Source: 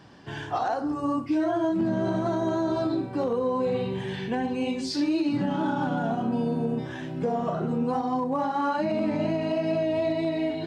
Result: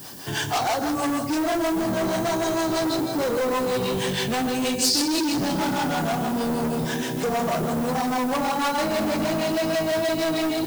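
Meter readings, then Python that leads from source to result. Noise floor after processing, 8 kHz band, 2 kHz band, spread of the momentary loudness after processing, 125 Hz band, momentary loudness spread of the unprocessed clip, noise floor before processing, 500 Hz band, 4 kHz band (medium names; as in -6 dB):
-28 dBFS, +21.0 dB, +8.5 dB, 2 LU, +1.0 dB, 4 LU, -36 dBFS, +2.5 dB, +13.0 dB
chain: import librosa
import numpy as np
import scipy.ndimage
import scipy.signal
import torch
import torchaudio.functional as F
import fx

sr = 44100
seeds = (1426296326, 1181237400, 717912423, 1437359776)

p1 = fx.high_shelf(x, sr, hz=5500.0, db=10.0)
p2 = fx.harmonic_tremolo(p1, sr, hz=6.3, depth_pct=70, crossover_hz=410.0)
p3 = fx.echo_feedback(p2, sr, ms=162, feedback_pct=60, wet_db=-9.0)
p4 = fx.rider(p3, sr, range_db=4, speed_s=0.5)
p5 = p3 + (p4 * 10.0 ** (-2.5 / 20.0))
p6 = np.clip(p5, -10.0 ** (-25.5 / 20.0), 10.0 ** (-25.5 / 20.0))
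p7 = fx.dmg_noise_colour(p6, sr, seeds[0], colour='blue', level_db=-57.0)
p8 = fx.bass_treble(p7, sr, bass_db=-3, treble_db=10)
y = p8 * 10.0 ** (4.5 / 20.0)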